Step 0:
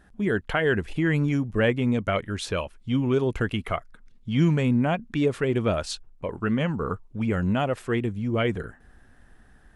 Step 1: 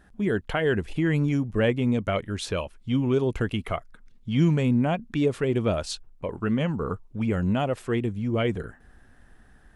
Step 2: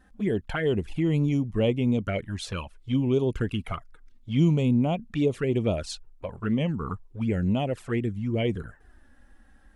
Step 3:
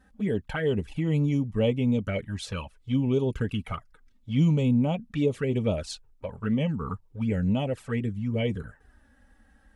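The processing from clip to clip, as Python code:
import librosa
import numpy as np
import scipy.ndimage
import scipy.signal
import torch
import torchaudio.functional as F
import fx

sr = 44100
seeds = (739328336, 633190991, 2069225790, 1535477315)

y1 = fx.dynamic_eq(x, sr, hz=1600.0, q=1.1, threshold_db=-39.0, ratio=4.0, max_db=-4)
y2 = fx.env_flanger(y1, sr, rest_ms=4.0, full_db=-19.5)
y3 = fx.notch_comb(y2, sr, f0_hz=350.0)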